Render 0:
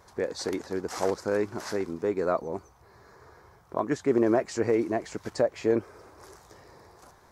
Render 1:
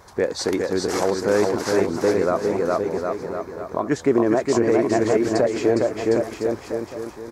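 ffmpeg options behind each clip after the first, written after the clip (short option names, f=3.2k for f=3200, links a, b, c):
-af "aecho=1:1:410|758.5|1055|1307|1521:0.631|0.398|0.251|0.158|0.1,alimiter=limit=-16dB:level=0:latency=1:release=241,volume=8dB"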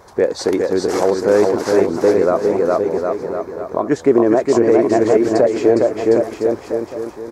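-af "equalizer=f=480:w=0.62:g=6.5"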